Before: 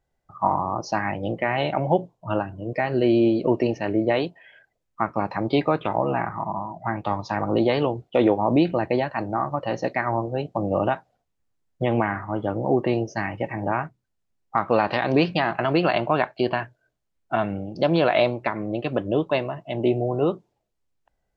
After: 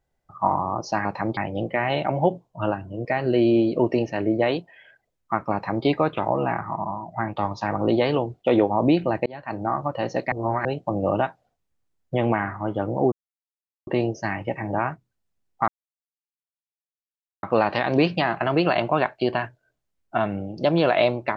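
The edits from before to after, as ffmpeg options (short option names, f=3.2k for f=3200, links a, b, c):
-filter_complex "[0:a]asplit=8[a][b][c][d][e][f][g][h];[a]atrim=end=1.052[i];[b]atrim=start=5.208:end=5.532[j];[c]atrim=start=1.048:end=8.94,asetpts=PTS-STARTPTS,afade=t=out:st=7.888:d=0.004:c=hsin[k];[d]atrim=start=8.94:end=10.002,asetpts=PTS-STARTPTS,afade=t=in:d=0.37[l];[e]atrim=start=9.998:end=10.332,asetpts=PTS-STARTPTS,areverse[m];[f]atrim=start=10.328:end=12.8,asetpts=PTS-STARTPTS,afade=t=out:st=2.468:d=0.004:c=hsin,apad=pad_dur=0.75[n];[g]atrim=start=12.8:end=14.61,asetpts=PTS-STARTPTS,afade=t=in:d=0.004:c=hsin,afade=t=out:st=1.806:d=0.004:c=hsin,apad=pad_dur=1.75[o];[h]atrim=start=14.61,asetpts=PTS-STARTPTS,afade=t=in:d=0.004:c=hsin[p];[i][j]acrossfade=d=0.004:c1=hsin:c2=hsin[q];[k][l]concat=n=2:v=0:a=1[r];[q][r]acrossfade=d=0.004:c1=hsin:c2=hsin[s];[s][m]acrossfade=d=0.004:c1=hsin:c2=hsin[t];[n][o][p]concat=n=3:v=0:a=1[u];[t][u]acrossfade=d=0.004:c1=hsin:c2=hsin"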